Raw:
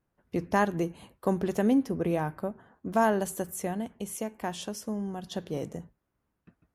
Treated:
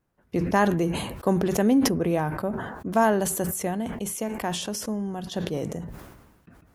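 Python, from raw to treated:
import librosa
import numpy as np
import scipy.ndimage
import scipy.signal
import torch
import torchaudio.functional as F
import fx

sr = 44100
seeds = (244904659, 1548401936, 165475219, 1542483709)

y = fx.sustainer(x, sr, db_per_s=46.0)
y = y * 10.0 ** (3.5 / 20.0)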